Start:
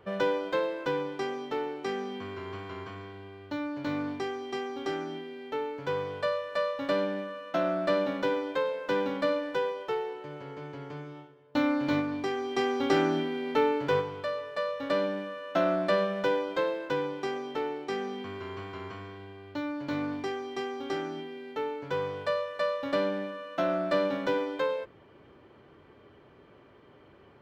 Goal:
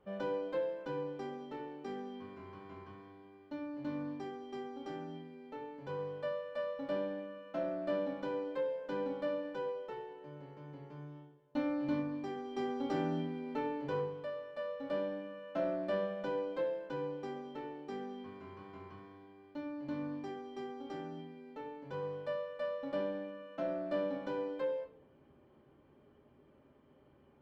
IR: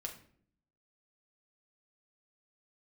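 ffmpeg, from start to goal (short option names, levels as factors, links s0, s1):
-filter_complex "[0:a]tiltshelf=f=1100:g=4.5[s0];[1:a]atrim=start_sample=2205,asetrate=70560,aresample=44100[s1];[s0][s1]afir=irnorm=-1:irlink=0,volume=0.501"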